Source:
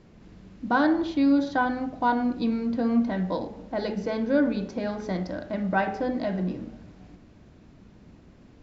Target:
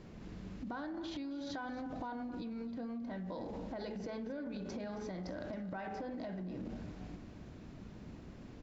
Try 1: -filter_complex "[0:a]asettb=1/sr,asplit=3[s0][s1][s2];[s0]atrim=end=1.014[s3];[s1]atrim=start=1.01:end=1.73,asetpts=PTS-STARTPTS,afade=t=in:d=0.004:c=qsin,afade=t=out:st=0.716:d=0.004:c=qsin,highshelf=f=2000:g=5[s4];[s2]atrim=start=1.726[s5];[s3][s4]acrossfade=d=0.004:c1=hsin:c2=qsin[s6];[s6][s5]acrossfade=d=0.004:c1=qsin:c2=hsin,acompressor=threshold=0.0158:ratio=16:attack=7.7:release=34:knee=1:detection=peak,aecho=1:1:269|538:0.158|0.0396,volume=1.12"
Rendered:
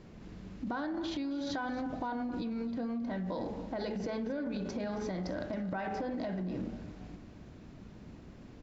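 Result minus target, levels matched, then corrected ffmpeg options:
compression: peak gain reduction -6 dB
-filter_complex "[0:a]asettb=1/sr,asplit=3[s0][s1][s2];[s0]atrim=end=1.014[s3];[s1]atrim=start=1.01:end=1.73,asetpts=PTS-STARTPTS,afade=t=in:d=0.004:c=qsin,afade=t=out:st=0.716:d=0.004:c=qsin,highshelf=f=2000:g=5[s4];[s2]atrim=start=1.726[s5];[s3][s4]acrossfade=d=0.004:c1=hsin:c2=qsin[s6];[s6][s5]acrossfade=d=0.004:c1=qsin:c2=hsin,acompressor=threshold=0.0075:ratio=16:attack=7.7:release=34:knee=1:detection=peak,aecho=1:1:269|538:0.158|0.0396,volume=1.12"

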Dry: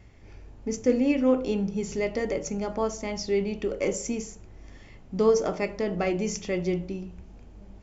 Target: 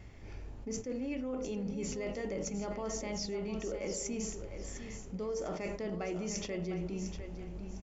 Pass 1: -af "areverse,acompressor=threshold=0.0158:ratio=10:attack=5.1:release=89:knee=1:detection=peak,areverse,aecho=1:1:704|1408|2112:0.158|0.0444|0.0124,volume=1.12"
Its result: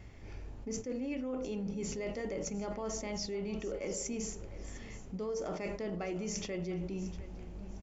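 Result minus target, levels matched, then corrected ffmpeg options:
echo-to-direct -6.5 dB
-af "areverse,acompressor=threshold=0.0158:ratio=10:attack=5.1:release=89:knee=1:detection=peak,areverse,aecho=1:1:704|1408|2112:0.335|0.0938|0.0263,volume=1.12"

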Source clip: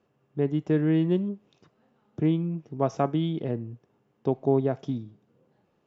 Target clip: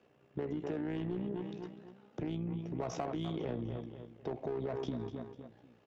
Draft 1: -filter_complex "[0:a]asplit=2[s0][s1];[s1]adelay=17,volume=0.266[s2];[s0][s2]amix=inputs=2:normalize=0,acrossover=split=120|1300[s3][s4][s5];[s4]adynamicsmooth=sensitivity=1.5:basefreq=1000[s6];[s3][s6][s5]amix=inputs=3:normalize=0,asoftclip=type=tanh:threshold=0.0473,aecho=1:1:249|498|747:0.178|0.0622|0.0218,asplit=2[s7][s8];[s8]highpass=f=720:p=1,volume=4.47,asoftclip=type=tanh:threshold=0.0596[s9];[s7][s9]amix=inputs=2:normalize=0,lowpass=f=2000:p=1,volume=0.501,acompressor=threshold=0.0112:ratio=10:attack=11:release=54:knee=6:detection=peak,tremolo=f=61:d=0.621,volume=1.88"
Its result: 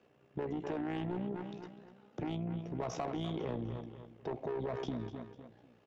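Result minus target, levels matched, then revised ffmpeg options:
saturation: distortion +9 dB
-filter_complex "[0:a]asplit=2[s0][s1];[s1]adelay=17,volume=0.266[s2];[s0][s2]amix=inputs=2:normalize=0,acrossover=split=120|1300[s3][s4][s5];[s4]adynamicsmooth=sensitivity=1.5:basefreq=1000[s6];[s3][s6][s5]amix=inputs=3:normalize=0,asoftclip=type=tanh:threshold=0.133,aecho=1:1:249|498|747:0.178|0.0622|0.0218,asplit=2[s7][s8];[s8]highpass=f=720:p=1,volume=4.47,asoftclip=type=tanh:threshold=0.0596[s9];[s7][s9]amix=inputs=2:normalize=0,lowpass=f=2000:p=1,volume=0.501,acompressor=threshold=0.0112:ratio=10:attack=11:release=54:knee=6:detection=peak,tremolo=f=61:d=0.621,volume=1.88"

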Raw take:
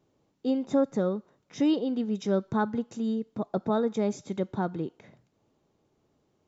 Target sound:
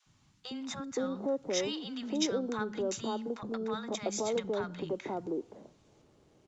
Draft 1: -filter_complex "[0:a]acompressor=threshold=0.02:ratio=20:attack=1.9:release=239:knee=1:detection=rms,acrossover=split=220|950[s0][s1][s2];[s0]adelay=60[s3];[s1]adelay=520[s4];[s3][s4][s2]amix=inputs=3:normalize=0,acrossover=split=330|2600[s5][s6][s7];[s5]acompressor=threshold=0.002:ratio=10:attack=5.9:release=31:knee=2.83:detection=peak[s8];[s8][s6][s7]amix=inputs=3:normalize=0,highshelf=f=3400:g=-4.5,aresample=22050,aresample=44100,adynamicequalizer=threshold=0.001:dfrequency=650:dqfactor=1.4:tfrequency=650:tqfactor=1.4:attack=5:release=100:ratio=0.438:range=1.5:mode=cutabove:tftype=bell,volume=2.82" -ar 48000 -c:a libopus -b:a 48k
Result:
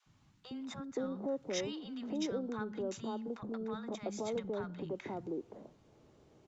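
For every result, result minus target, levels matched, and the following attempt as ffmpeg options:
compression: peak gain reduction +5.5 dB; 8 kHz band -5.0 dB
-filter_complex "[0:a]acompressor=threshold=0.0398:ratio=20:attack=1.9:release=239:knee=1:detection=rms,acrossover=split=220|950[s0][s1][s2];[s0]adelay=60[s3];[s1]adelay=520[s4];[s3][s4][s2]amix=inputs=3:normalize=0,acrossover=split=330|2600[s5][s6][s7];[s5]acompressor=threshold=0.002:ratio=10:attack=5.9:release=31:knee=2.83:detection=peak[s8];[s8][s6][s7]amix=inputs=3:normalize=0,highshelf=f=3400:g=-4.5,aresample=22050,aresample=44100,adynamicequalizer=threshold=0.001:dfrequency=650:dqfactor=1.4:tfrequency=650:tqfactor=1.4:attack=5:release=100:ratio=0.438:range=1.5:mode=cutabove:tftype=bell,volume=2.82" -ar 48000 -c:a libopus -b:a 48k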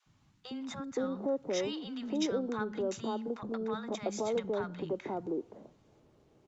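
8 kHz band -6.0 dB
-filter_complex "[0:a]acompressor=threshold=0.0398:ratio=20:attack=1.9:release=239:knee=1:detection=rms,acrossover=split=220|950[s0][s1][s2];[s0]adelay=60[s3];[s1]adelay=520[s4];[s3][s4][s2]amix=inputs=3:normalize=0,acrossover=split=330|2600[s5][s6][s7];[s5]acompressor=threshold=0.002:ratio=10:attack=5.9:release=31:knee=2.83:detection=peak[s8];[s8][s6][s7]amix=inputs=3:normalize=0,highshelf=f=3400:g=4,aresample=22050,aresample=44100,adynamicequalizer=threshold=0.001:dfrequency=650:dqfactor=1.4:tfrequency=650:tqfactor=1.4:attack=5:release=100:ratio=0.438:range=1.5:mode=cutabove:tftype=bell,volume=2.82" -ar 48000 -c:a libopus -b:a 48k

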